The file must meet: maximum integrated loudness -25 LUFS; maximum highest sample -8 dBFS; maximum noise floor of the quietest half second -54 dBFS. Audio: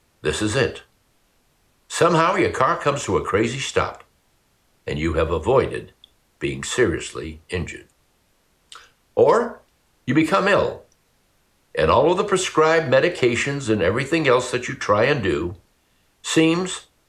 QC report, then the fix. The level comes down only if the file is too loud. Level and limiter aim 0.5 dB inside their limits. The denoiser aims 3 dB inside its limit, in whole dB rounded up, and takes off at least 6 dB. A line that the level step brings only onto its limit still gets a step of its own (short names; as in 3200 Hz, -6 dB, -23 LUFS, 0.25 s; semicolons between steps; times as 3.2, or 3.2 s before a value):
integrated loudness -20.5 LUFS: fail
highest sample -5.0 dBFS: fail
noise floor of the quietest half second -63 dBFS: OK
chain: gain -5 dB